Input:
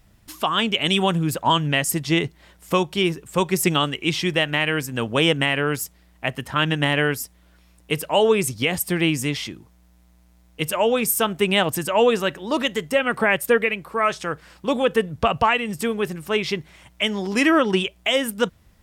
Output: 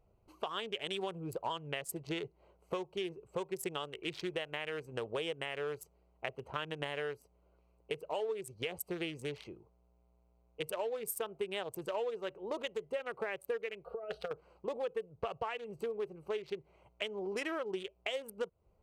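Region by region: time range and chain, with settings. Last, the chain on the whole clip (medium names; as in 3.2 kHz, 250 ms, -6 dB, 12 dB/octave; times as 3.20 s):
13.85–14.31 s: static phaser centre 1.5 kHz, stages 8 + comb 4.2 ms, depth 78% + compressor with a negative ratio -28 dBFS, ratio -0.5
whole clip: local Wiener filter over 25 samples; resonant low shelf 330 Hz -6.5 dB, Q 3; compression 6:1, threshold -27 dBFS; trim -8 dB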